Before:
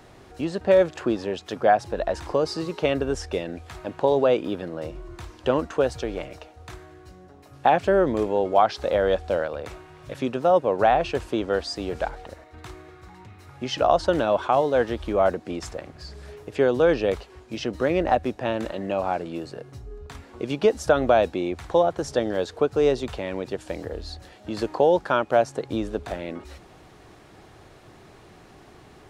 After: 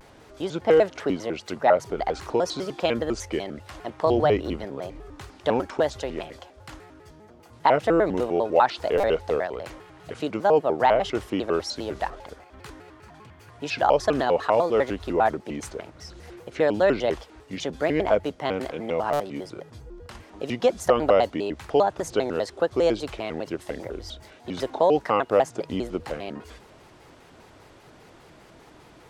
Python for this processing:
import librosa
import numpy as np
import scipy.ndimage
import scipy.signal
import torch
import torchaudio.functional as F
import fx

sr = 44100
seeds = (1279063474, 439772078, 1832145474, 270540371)

y = fx.octave_divider(x, sr, octaves=2, level_db=-1.0, at=(4.06, 4.65))
y = fx.low_shelf(y, sr, hz=240.0, db=-4.5)
y = fx.buffer_glitch(y, sr, at_s=(8.97, 19.13), block=256, repeats=10)
y = fx.vibrato_shape(y, sr, shape='square', rate_hz=5.0, depth_cents=250.0)